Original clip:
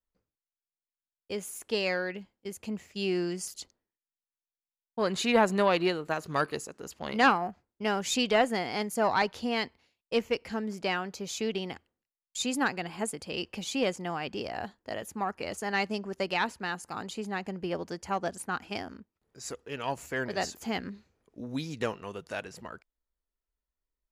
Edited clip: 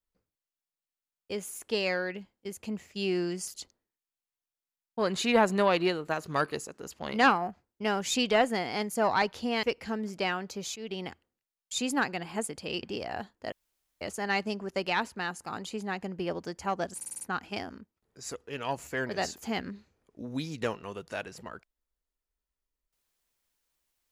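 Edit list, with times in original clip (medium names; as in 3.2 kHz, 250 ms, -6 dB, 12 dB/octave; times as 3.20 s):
9.63–10.27 s: delete
11.40–11.68 s: fade in, from -17 dB
13.47–14.27 s: delete
14.96–15.45 s: room tone
18.40 s: stutter 0.05 s, 6 plays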